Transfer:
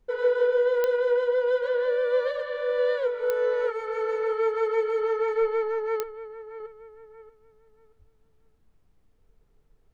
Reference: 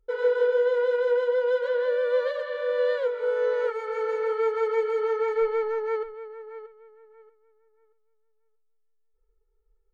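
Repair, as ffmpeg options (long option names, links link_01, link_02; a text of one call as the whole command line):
ffmpeg -i in.wav -filter_complex "[0:a]adeclick=threshold=4,asplit=3[link_01][link_02][link_03];[link_01]afade=type=out:start_time=7.98:duration=0.02[link_04];[link_02]highpass=frequency=140:width=0.5412,highpass=frequency=140:width=1.3066,afade=type=in:start_time=7.98:duration=0.02,afade=type=out:start_time=8.1:duration=0.02[link_05];[link_03]afade=type=in:start_time=8.1:duration=0.02[link_06];[link_04][link_05][link_06]amix=inputs=3:normalize=0,agate=range=-21dB:threshold=-54dB,asetnsamples=nb_out_samples=441:pad=0,asendcmd='6.6 volume volume -4.5dB',volume=0dB" out.wav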